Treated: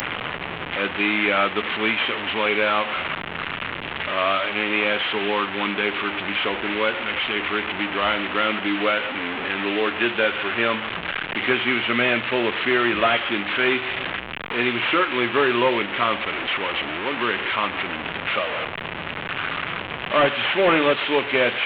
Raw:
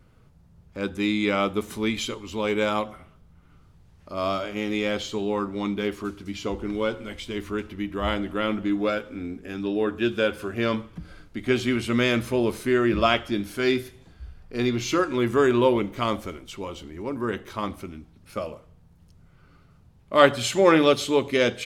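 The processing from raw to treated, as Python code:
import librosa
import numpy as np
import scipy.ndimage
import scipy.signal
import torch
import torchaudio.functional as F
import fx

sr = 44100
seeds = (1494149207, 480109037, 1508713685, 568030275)

y = fx.delta_mod(x, sr, bps=16000, step_db=-27.0)
y = fx.tilt_eq(y, sr, slope=4.5)
y = fx.band_squash(y, sr, depth_pct=40)
y = F.gain(torch.from_numpy(y), 6.0).numpy()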